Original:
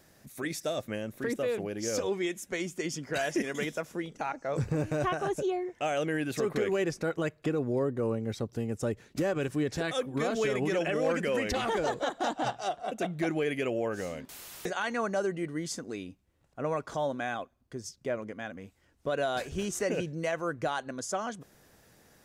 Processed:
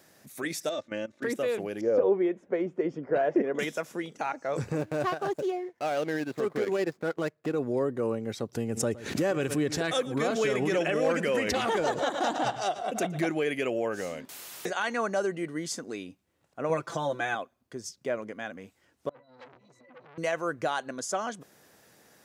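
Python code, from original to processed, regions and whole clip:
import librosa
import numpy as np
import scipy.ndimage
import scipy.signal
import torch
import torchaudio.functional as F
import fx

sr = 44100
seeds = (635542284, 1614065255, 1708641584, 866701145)

y = fx.chain(x, sr, fx.lowpass(hz=6400.0, slope=24),
    fx.comb(ms=3.4, depth=0.63),
    fx.level_steps(step_db=17), at=(0.69, 1.23))
y = fx.chain(y, sr, fx.lowpass(hz=1200.0, slope=12),
    fx.peak_eq(hz=480.0, db=8.0, octaves=1.1), at=(1.81, 3.59))
y = fx.chain(y, sr, fx.median_filter(points=15),
    fx.transient(attack_db=-2, sustain_db=-10), at=(4.78, 7.54))
y = fx.chain(y, sr, fx.low_shelf(hz=140.0, db=6.5),
    fx.echo_single(ms=115, db=-18.0),
    fx.pre_swell(db_per_s=91.0), at=(8.55, 13.25))
y = fx.chain(y, sr, fx.peak_eq(hz=100.0, db=8.0, octaves=0.58),
    fx.comb(ms=5.9, depth=0.8), at=(16.69, 17.35))
y = fx.chain(y, sr, fx.over_compress(threshold_db=-35.0, ratio=-0.5),
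    fx.octave_resonator(note='B', decay_s=0.14),
    fx.transformer_sat(knee_hz=2000.0), at=(19.09, 20.18))
y = scipy.signal.sosfilt(scipy.signal.butter(2, 77.0, 'highpass', fs=sr, output='sos'), y)
y = fx.low_shelf(y, sr, hz=130.0, db=-11.5)
y = y * 10.0 ** (2.5 / 20.0)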